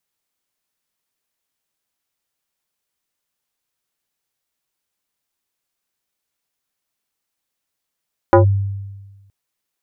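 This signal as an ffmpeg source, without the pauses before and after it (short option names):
-f lavfi -i "aevalsrc='0.596*pow(10,-3*t/1.31)*sin(2*PI*98.9*t+2.3*clip(1-t/0.12,0,1)*sin(2*PI*4.53*98.9*t))':d=0.97:s=44100"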